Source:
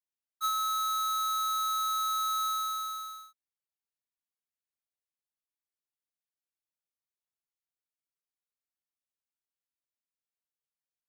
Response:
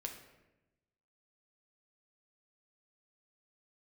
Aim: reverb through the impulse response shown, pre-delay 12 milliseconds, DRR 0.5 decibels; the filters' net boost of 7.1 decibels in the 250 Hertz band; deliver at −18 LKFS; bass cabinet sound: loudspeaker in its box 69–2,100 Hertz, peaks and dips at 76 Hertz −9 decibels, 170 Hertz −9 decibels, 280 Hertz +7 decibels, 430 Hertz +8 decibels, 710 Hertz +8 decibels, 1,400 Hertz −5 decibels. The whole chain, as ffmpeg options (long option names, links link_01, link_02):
-filter_complex "[0:a]equalizer=frequency=250:width_type=o:gain=5,asplit=2[link_01][link_02];[1:a]atrim=start_sample=2205,adelay=12[link_03];[link_02][link_03]afir=irnorm=-1:irlink=0,volume=1.5dB[link_04];[link_01][link_04]amix=inputs=2:normalize=0,highpass=frequency=69:width=0.5412,highpass=frequency=69:width=1.3066,equalizer=frequency=76:width_type=q:width=4:gain=-9,equalizer=frequency=170:width_type=q:width=4:gain=-9,equalizer=frequency=280:width_type=q:width=4:gain=7,equalizer=frequency=430:width_type=q:width=4:gain=8,equalizer=frequency=710:width_type=q:width=4:gain=8,equalizer=frequency=1400:width_type=q:width=4:gain=-5,lowpass=frequency=2100:width=0.5412,lowpass=frequency=2100:width=1.3066,volume=26.5dB"